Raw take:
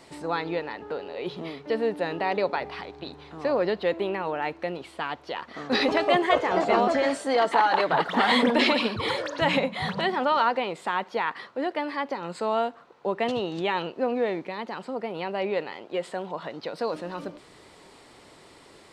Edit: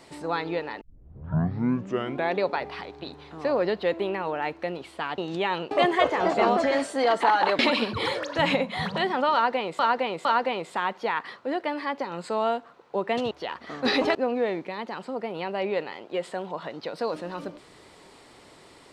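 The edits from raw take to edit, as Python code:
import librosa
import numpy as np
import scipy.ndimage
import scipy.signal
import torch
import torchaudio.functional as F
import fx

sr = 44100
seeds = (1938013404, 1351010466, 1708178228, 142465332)

y = fx.edit(x, sr, fx.tape_start(start_s=0.81, length_s=1.62),
    fx.swap(start_s=5.18, length_s=0.84, other_s=13.42, other_length_s=0.53),
    fx.cut(start_s=7.9, length_s=0.72),
    fx.repeat(start_s=10.36, length_s=0.46, count=3), tone=tone)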